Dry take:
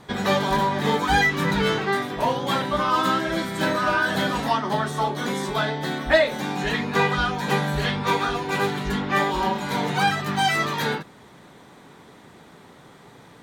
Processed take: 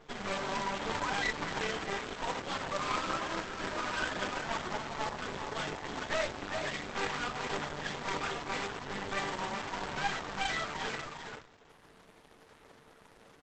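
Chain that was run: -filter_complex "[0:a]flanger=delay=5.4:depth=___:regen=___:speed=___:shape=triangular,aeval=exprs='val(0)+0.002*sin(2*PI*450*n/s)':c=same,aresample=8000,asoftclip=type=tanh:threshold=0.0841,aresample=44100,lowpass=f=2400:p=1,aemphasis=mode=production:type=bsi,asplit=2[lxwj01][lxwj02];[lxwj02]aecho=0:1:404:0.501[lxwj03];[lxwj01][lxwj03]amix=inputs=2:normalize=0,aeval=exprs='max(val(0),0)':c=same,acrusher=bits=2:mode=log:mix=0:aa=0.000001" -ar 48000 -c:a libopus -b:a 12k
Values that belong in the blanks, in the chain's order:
8.9, 0, 0.89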